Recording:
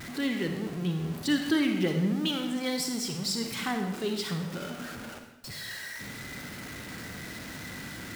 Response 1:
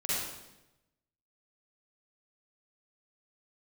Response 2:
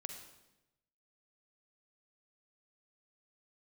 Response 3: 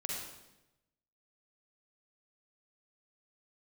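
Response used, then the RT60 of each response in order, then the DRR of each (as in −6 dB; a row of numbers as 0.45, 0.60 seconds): 2; 0.95, 0.95, 0.95 seconds; −10.0, 4.5, −3.0 decibels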